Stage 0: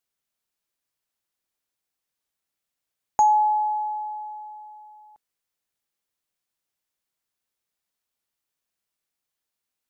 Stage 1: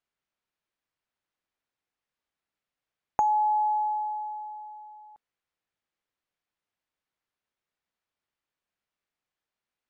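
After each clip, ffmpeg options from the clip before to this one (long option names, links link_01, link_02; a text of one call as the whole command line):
ffmpeg -i in.wav -af "lowpass=2100,aemphasis=mode=production:type=75kf,acompressor=threshold=-22dB:ratio=6" out.wav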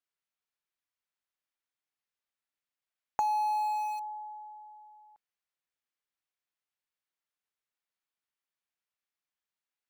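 ffmpeg -i in.wav -filter_complex "[0:a]tiltshelf=frequency=760:gain=-4.5,asplit=2[link_01][link_02];[link_02]aeval=exprs='val(0)*gte(abs(val(0)),0.0501)':channel_layout=same,volume=-7.5dB[link_03];[link_01][link_03]amix=inputs=2:normalize=0,volume=-8.5dB" out.wav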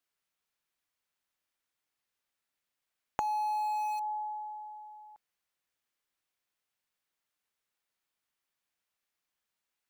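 ffmpeg -i in.wav -af "acompressor=threshold=-36dB:ratio=6,volume=5.5dB" out.wav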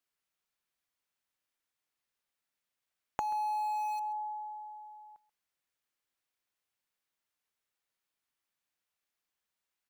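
ffmpeg -i in.wav -af "aecho=1:1:133:0.106,volume=-2dB" out.wav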